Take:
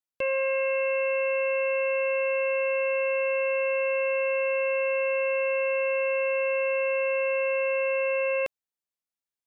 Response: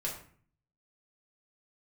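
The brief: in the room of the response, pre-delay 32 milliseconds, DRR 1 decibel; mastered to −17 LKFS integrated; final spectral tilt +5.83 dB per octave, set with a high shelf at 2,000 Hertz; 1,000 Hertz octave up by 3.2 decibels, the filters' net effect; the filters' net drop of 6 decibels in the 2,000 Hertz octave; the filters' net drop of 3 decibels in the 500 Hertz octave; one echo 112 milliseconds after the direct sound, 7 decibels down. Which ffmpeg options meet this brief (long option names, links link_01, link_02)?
-filter_complex "[0:a]equalizer=frequency=500:width_type=o:gain=-4,equalizer=frequency=1000:width_type=o:gain=6.5,highshelf=frequency=2000:gain=-6,equalizer=frequency=2000:width_type=o:gain=-5,aecho=1:1:112:0.447,asplit=2[link_01][link_02];[1:a]atrim=start_sample=2205,adelay=32[link_03];[link_02][link_03]afir=irnorm=-1:irlink=0,volume=-3.5dB[link_04];[link_01][link_04]amix=inputs=2:normalize=0,volume=5.5dB"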